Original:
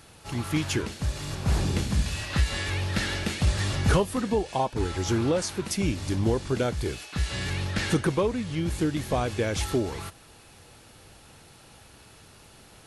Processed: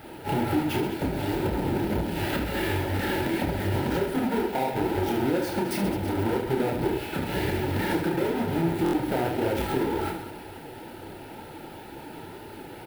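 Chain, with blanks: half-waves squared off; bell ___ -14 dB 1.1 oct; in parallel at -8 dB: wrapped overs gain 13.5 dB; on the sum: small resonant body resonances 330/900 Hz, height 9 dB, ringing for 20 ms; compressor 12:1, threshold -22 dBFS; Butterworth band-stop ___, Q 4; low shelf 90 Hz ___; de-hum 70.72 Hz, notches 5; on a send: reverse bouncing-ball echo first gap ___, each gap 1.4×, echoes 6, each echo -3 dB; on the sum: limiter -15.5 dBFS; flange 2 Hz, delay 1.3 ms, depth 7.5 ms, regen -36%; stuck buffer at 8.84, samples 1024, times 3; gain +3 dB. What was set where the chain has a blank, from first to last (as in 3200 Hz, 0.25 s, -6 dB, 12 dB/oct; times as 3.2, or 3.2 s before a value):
6500 Hz, 1100 Hz, -11 dB, 30 ms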